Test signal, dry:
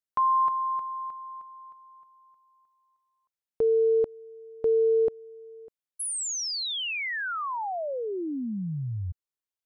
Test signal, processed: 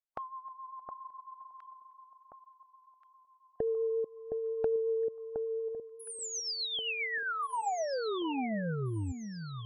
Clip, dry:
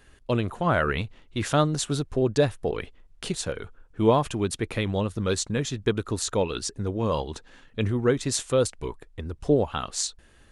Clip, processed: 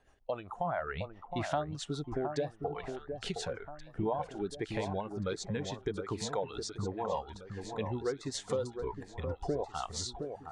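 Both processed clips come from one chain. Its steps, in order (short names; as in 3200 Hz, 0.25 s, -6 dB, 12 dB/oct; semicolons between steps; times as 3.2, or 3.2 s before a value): rotary speaker horn 7.5 Hz; LPF 5800 Hz 12 dB/oct; bell 770 Hz +15 dB 0.94 oct; compressor 4:1, threshold -33 dBFS; spectral noise reduction 12 dB; echo with dull and thin repeats by turns 0.715 s, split 1400 Hz, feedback 60%, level -6.5 dB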